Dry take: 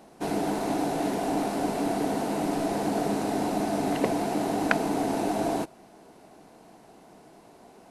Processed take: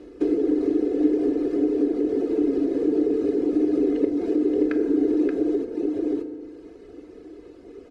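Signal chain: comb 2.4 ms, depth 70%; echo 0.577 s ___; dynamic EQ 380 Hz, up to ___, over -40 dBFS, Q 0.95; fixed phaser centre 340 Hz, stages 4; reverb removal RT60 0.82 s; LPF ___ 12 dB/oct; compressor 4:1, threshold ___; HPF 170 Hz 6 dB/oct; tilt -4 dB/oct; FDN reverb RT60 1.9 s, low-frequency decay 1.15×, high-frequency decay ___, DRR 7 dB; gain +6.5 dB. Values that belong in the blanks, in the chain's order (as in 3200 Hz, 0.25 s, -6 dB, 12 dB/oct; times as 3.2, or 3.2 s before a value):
-6.5 dB, +8 dB, 7200 Hz, -35 dBFS, 0.55×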